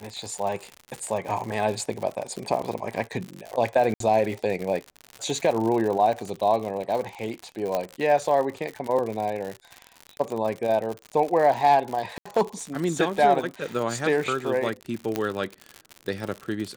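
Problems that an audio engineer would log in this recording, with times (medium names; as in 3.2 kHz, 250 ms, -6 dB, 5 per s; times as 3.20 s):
crackle 95 per s -29 dBFS
3.94–4.00 s: dropout 63 ms
7.75 s: pop -12 dBFS
12.18–12.26 s: dropout 75 ms
15.16 s: pop -11 dBFS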